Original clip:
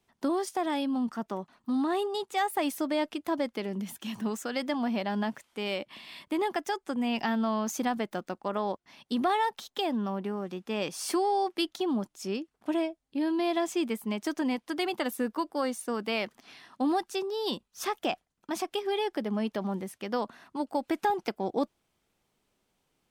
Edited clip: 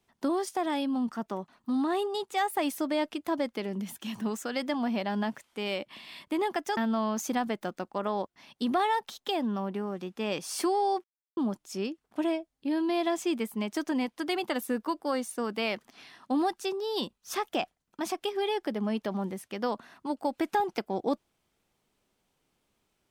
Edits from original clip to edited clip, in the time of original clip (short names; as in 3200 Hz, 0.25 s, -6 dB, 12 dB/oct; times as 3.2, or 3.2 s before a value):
6.77–7.27 cut
11.54–11.87 mute